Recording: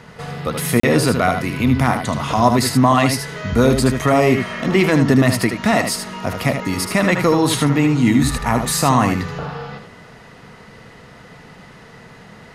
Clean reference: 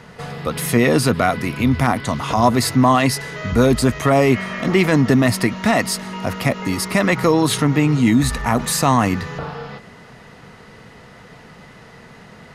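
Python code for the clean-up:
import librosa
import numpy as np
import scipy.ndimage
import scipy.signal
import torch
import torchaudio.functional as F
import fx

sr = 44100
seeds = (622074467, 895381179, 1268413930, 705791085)

y = fx.fix_interpolate(x, sr, at_s=(0.8,), length_ms=34.0)
y = fx.fix_echo_inverse(y, sr, delay_ms=77, level_db=-7.0)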